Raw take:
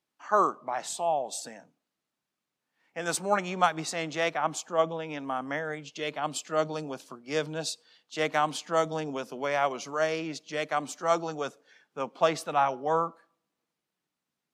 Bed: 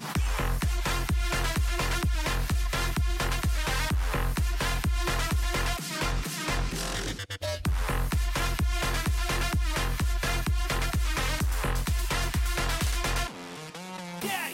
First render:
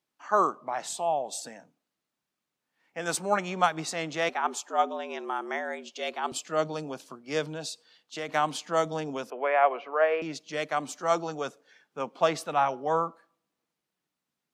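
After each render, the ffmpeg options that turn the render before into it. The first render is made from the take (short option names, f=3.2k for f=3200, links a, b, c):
-filter_complex "[0:a]asettb=1/sr,asplit=3[a][b][c];[a]atrim=end=4.294[d];[b]atrim=start=4.29:end=6.32,asetpts=PTS-STARTPTS,afade=t=in:d=0.004:c=qsin,afade=t=out:st=2.026:d=0.004:c=qsin,afreqshift=94[e];[c]atrim=start=6.316[f];[d][e]acrossfade=d=0.004:c1=hsin:c2=qsin[g];[g][f]acrossfade=d=0.004:c1=qsin:c2=hsin,asettb=1/sr,asplit=3[h][i][j];[h]atrim=end=7.494[k];[i]atrim=start=7.49:end=8.29,asetpts=PTS-STARTPTS,afade=t=in:d=0.004:c=qsin,afade=t=out:st=0.796:d=0.004:c=qsin,acompressor=threshold=-33dB:ratio=2.5:attack=3.2:release=140:knee=1:detection=peak[l];[j]atrim=start=8.286[m];[k][l]acrossfade=d=0.004:c1=hsin:c2=qsin[n];[n][m]acrossfade=d=0.004:c1=qsin:c2=hsin,asettb=1/sr,asplit=3[o][p][q];[o]atrim=end=9.304[r];[p]atrim=start=9.3:end=10.22,asetpts=PTS-STARTPTS,afade=t=in:d=0.004:c=qsin,afade=t=out:st=0.916:d=0.004:c=qsin,highpass=f=300:w=0.5412,highpass=f=300:w=1.3066,equalizer=f=310:t=q:w=4:g=-5,equalizer=f=480:t=q:w=4:g=5,equalizer=f=710:t=q:w=4:g=6,equalizer=f=1.1k:t=q:w=4:g=3,equalizer=f=1.7k:t=q:w=4:g=3,equalizer=f=2.5k:t=q:w=4:g=4,lowpass=f=2.6k:w=0.5412,lowpass=f=2.6k:w=1.3066[s];[q]atrim=start=10.216[t];[r][s]acrossfade=d=0.004:c1=hsin:c2=qsin[u];[u][t]acrossfade=d=0.004:c1=qsin:c2=hsin"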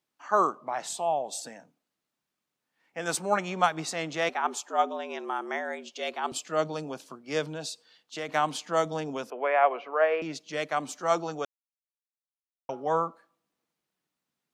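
-filter_complex "[0:a]asplit=3[a][b][c];[a]atrim=end=11.45,asetpts=PTS-STARTPTS,afade=t=out:st=11.446:d=0.004:c=hsin[d];[b]atrim=start=11.45:end=12.69,asetpts=PTS-STARTPTS,volume=0[e];[c]atrim=start=12.69,asetpts=PTS-STARTPTS,afade=t=in:d=0.004:c=hsin[f];[d][e][f]concat=n=3:v=0:a=1"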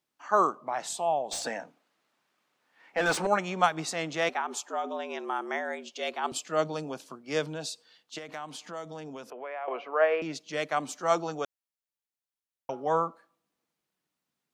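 -filter_complex "[0:a]asettb=1/sr,asplit=3[a][b][c];[a]atrim=end=1.314[d];[b]atrim=start=1.31:end=3.27,asetpts=PTS-STARTPTS,afade=t=in:d=0.004:c=qsin,afade=t=out:st=1.956:d=0.004:c=qsin,asplit=2[e][f];[f]highpass=f=720:p=1,volume=22dB,asoftclip=type=tanh:threshold=-15dB[g];[e][g]amix=inputs=2:normalize=0,lowpass=f=1.9k:p=1,volume=-6dB[h];[c]atrim=start=3.266[i];[d][h]acrossfade=d=0.004:c1=hsin:c2=qsin[j];[j][i]acrossfade=d=0.004:c1=qsin:c2=hsin,asplit=3[k][l][m];[k]afade=t=out:st=4.41:d=0.02[n];[l]acompressor=threshold=-27dB:ratio=6:attack=3.2:release=140:knee=1:detection=peak,afade=t=in:st=4.41:d=0.02,afade=t=out:st=4.84:d=0.02[o];[m]afade=t=in:st=4.84:d=0.02[p];[n][o][p]amix=inputs=3:normalize=0,asettb=1/sr,asplit=3[q][r][s];[q]atrim=end=8.184[t];[r]atrim=start=8.18:end=9.68,asetpts=PTS-STARTPTS,afade=t=in:d=0.004:c=qsin,afade=t=out:st=1.496:d=0.004:c=qsin,acompressor=threshold=-41dB:ratio=2.5:attack=3.2:release=140:knee=1:detection=peak[u];[s]atrim=start=9.676[v];[t][u]acrossfade=d=0.004:c1=hsin:c2=qsin[w];[w][v]acrossfade=d=0.004:c1=qsin:c2=hsin"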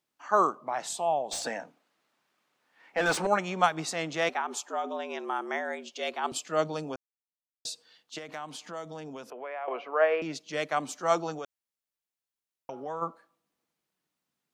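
-filter_complex "[0:a]asplit=3[a][b][c];[a]afade=t=out:st=11.37:d=0.02[d];[b]acompressor=threshold=-35dB:ratio=3:attack=3.2:release=140:knee=1:detection=peak,afade=t=in:st=11.37:d=0.02,afade=t=out:st=13.01:d=0.02[e];[c]afade=t=in:st=13.01:d=0.02[f];[d][e][f]amix=inputs=3:normalize=0,asplit=3[g][h][i];[g]atrim=end=6.96,asetpts=PTS-STARTPTS,afade=t=out:st=6.956:d=0.004:c=hsin[j];[h]atrim=start=6.96:end=7.65,asetpts=PTS-STARTPTS,volume=0[k];[i]atrim=start=7.65,asetpts=PTS-STARTPTS,afade=t=in:d=0.004:c=hsin[l];[j][k][l]concat=n=3:v=0:a=1"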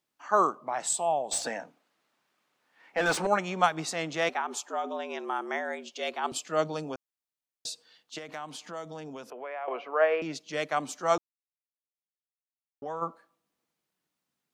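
-filter_complex "[0:a]asettb=1/sr,asplit=3[a][b][c];[a]atrim=end=0.804[d];[b]atrim=start=0.8:end=1.38,asetpts=PTS-STARTPTS,afade=t=in:d=0.004:c=qsin,afade=t=out:st=0.576:d=0.004:c=qsin,equalizer=f=7.9k:w=6.7:g=12.5[e];[c]atrim=start=1.376[f];[d][e]acrossfade=d=0.004:c1=hsin:c2=qsin[g];[g][f]acrossfade=d=0.004:c1=qsin:c2=hsin,asplit=3[h][i][j];[h]atrim=end=11.18,asetpts=PTS-STARTPTS,afade=t=out:st=11.176:d=0.004:c=hsin[k];[i]atrim=start=11.18:end=12.82,asetpts=PTS-STARTPTS,volume=0[l];[j]atrim=start=12.82,asetpts=PTS-STARTPTS,afade=t=in:d=0.004:c=hsin[m];[k][l][m]concat=n=3:v=0:a=1"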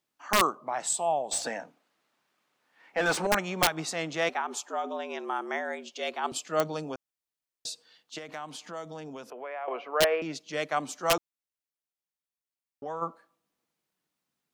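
-af "aeval=exprs='(mod(5.01*val(0)+1,2)-1)/5.01':c=same"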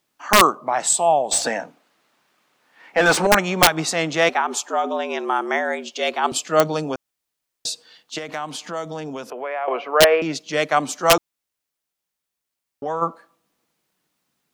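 -af "volume=10.5dB"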